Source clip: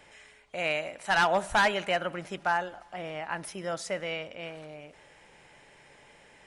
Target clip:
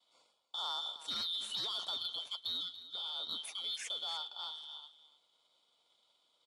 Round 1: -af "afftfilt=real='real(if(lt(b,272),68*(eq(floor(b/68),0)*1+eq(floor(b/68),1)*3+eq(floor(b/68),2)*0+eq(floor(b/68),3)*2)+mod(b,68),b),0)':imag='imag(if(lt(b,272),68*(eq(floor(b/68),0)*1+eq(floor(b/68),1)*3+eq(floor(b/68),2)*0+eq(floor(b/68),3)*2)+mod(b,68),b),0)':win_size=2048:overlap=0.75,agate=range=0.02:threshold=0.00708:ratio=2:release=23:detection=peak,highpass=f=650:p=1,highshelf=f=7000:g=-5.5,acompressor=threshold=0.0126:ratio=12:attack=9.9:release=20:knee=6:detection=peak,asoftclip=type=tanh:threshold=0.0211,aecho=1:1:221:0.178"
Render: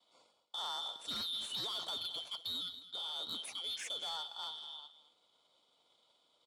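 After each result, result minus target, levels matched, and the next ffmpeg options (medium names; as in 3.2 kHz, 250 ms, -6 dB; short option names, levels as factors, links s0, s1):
saturation: distortion +11 dB; echo 74 ms early; 500 Hz band +3.5 dB
-af "afftfilt=real='real(if(lt(b,272),68*(eq(floor(b/68),0)*1+eq(floor(b/68),1)*3+eq(floor(b/68),2)*0+eq(floor(b/68),3)*2)+mod(b,68),b),0)':imag='imag(if(lt(b,272),68*(eq(floor(b/68),0)*1+eq(floor(b/68),1)*3+eq(floor(b/68),2)*0+eq(floor(b/68),3)*2)+mod(b,68),b),0)':win_size=2048:overlap=0.75,agate=range=0.02:threshold=0.00708:ratio=2:release=23:detection=peak,highpass=f=650:p=1,highshelf=f=7000:g=-5.5,acompressor=threshold=0.0126:ratio=12:attack=9.9:release=20:knee=6:detection=peak,asoftclip=type=tanh:threshold=0.0473,aecho=1:1:221:0.178"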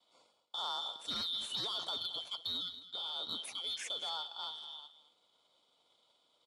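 echo 74 ms early; 500 Hz band +4.0 dB
-af "afftfilt=real='real(if(lt(b,272),68*(eq(floor(b/68),0)*1+eq(floor(b/68),1)*3+eq(floor(b/68),2)*0+eq(floor(b/68),3)*2)+mod(b,68),b),0)':imag='imag(if(lt(b,272),68*(eq(floor(b/68),0)*1+eq(floor(b/68),1)*3+eq(floor(b/68),2)*0+eq(floor(b/68),3)*2)+mod(b,68),b),0)':win_size=2048:overlap=0.75,agate=range=0.02:threshold=0.00708:ratio=2:release=23:detection=peak,highpass=f=650:p=1,highshelf=f=7000:g=-5.5,acompressor=threshold=0.0126:ratio=12:attack=9.9:release=20:knee=6:detection=peak,asoftclip=type=tanh:threshold=0.0473,aecho=1:1:295:0.178"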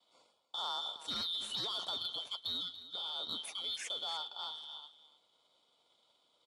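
500 Hz band +4.0 dB
-af "afftfilt=real='real(if(lt(b,272),68*(eq(floor(b/68),0)*1+eq(floor(b/68),1)*3+eq(floor(b/68),2)*0+eq(floor(b/68),3)*2)+mod(b,68),b),0)':imag='imag(if(lt(b,272),68*(eq(floor(b/68),0)*1+eq(floor(b/68),1)*3+eq(floor(b/68),2)*0+eq(floor(b/68),3)*2)+mod(b,68),b),0)':win_size=2048:overlap=0.75,agate=range=0.02:threshold=0.00708:ratio=2:release=23:detection=peak,highpass=f=1400:p=1,highshelf=f=7000:g=-5.5,acompressor=threshold=0.0126:ratio=12:attack=9.9:release=20:knee=6:detection=peak,asoftclip=type=tanh:threshold=0.0473,aecho=1:1:295:0.178"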